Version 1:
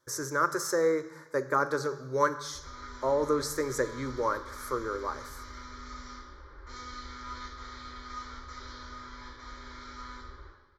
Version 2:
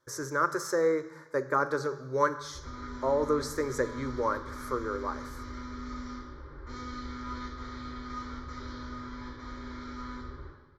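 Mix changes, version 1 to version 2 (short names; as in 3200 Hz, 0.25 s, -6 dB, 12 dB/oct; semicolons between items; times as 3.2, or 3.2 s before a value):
background: add bell 170 Hz +14.5 dB 2.1 oct; master: add high shelf 5100 Hz -7 dB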